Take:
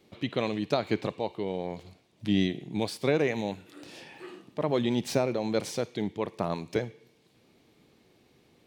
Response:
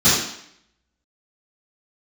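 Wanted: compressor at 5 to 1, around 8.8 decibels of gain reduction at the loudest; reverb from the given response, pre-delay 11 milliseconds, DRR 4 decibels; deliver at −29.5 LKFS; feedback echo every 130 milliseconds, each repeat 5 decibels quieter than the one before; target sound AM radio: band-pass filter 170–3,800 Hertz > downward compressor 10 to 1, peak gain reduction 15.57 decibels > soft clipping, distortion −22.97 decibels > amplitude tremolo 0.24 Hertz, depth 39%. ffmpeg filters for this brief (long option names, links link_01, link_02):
-filter_complex "[0:a]acompressor=threshold=-30dB:ratio=5,aecho=1:1:130|260|390|520|650|780|910:0.562|0.315|0.176|0.0988|0.0553|0.031|0.0173,asplit=2[link_01][link_02];[1:a]atrim=start_sample=2205,adelay=11[link_03];[link_02][link_03]afir=irnorm=-1:irlink=0,volume=-25.5dB[link_04];[link_01][link_04]amix=inputs=2:normalize=0,highpass=170,lowpass=3800,acompressor=threshold=-39dB:ratio=10,asoftclip=threshold=-32dB,tremolo=f=0.24:d=0.39,volume=17dB"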